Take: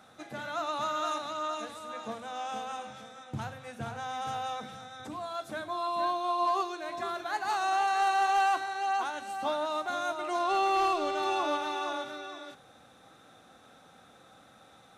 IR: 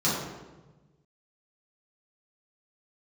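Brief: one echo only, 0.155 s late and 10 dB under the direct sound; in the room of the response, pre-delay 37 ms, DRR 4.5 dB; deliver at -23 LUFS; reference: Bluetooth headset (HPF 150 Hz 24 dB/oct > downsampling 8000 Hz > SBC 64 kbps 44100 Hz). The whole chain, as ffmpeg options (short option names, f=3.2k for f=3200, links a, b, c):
-filter_complex "[0:a]aecho=1:1:155:0.316,asplit=2[a][b];[1:a]atrim=start_sample=2205,adelay=37[c];[b][c]afir=irnorm=-1:irlink=0,volume=-17.5dB[d];[a][d]amix=inputs=2:normalize=0,highpass=f=150:w=0.5412,highpass=f=150:w=1.3066,aresample=8000,aresample=44100,volume=7dB" -ar 44100 -c:a sbc -b:a 64k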